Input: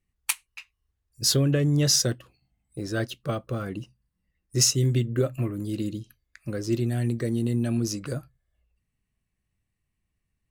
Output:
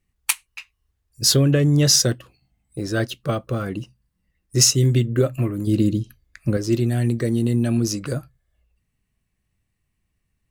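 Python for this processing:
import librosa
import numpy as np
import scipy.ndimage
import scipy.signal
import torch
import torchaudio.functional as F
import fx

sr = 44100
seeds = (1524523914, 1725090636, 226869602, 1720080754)

y = fx.low_shelf(x, sr, hz=450.0, db=7.5, at=(5.67, 6.57))
y = F.gain(torch.from_numpy(y), 5.5).numpy()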